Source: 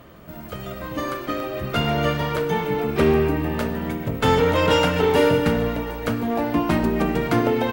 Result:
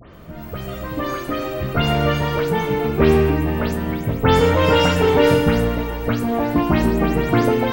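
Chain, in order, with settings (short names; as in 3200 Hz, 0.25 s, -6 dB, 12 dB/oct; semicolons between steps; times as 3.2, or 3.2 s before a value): spectral delay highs late, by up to 0.134 s; low shelf 95 Hz +6.5 dB; gain +2.5 dB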